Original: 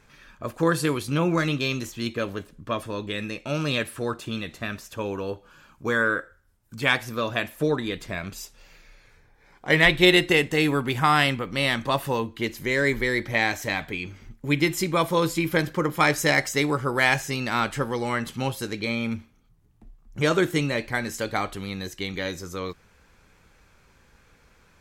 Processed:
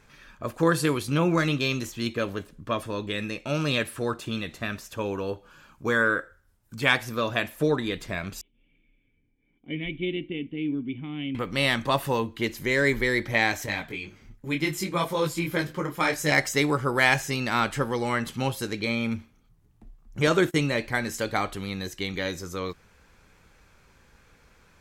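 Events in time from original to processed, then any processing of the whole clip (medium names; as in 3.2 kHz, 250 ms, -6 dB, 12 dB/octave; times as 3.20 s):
8.41–11.35 s: cascade formant filter i
13.66–16.32 s: detune thickener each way 22 cents
20.27–20.68 s: gate -33 dBFS, range -24 dB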